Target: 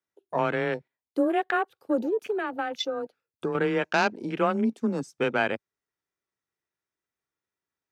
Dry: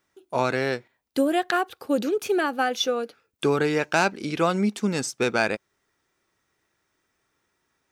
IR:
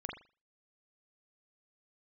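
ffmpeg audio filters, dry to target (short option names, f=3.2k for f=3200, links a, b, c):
-filter_complex "[0:a]afwtdn=0.0251,asettb=1/sr,asplit=3[a][b][c];[a]atrim=end=2.304[d];[b]atrim=start=2.3:end=3.55,asetpts=PTS-STARTPTS,afade=t=in:d=0.004:c=qsin,afade=t=out:st=1.246:d=0.004:c=qsin,acompressor=threshold=-24dB:ratio=6[e];[c]atrim=start=3.546[f];[d][e]acrossfade=d=0.004:c1=hsin:c2=qsin[g];[g][f]acrossfade=d=0.004:c1=qsin:c2=hsin,afreqshift=17,volume=-2dB"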